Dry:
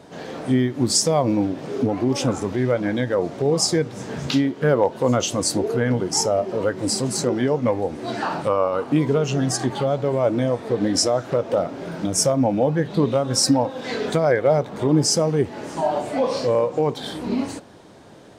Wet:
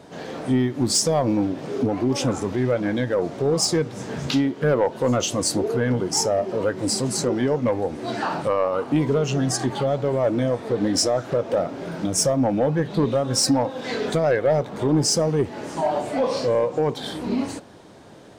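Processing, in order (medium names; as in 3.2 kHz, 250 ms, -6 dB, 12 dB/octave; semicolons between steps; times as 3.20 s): saturation -11 dBFS, distortion -19 dB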